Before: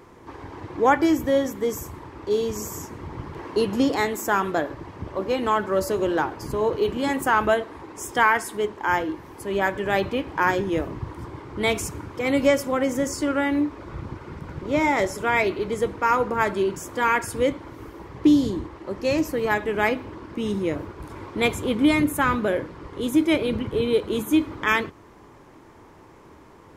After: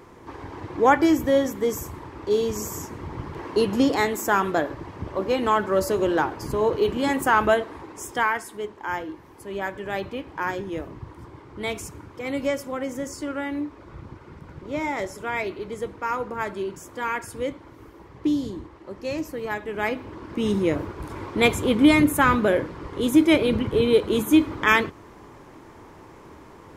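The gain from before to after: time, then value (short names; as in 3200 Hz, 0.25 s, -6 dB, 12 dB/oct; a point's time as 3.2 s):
7.74 s +1 dB
8.47 s -6.5 dB
19.64 s -6.5 dB
20.46 s +3 dB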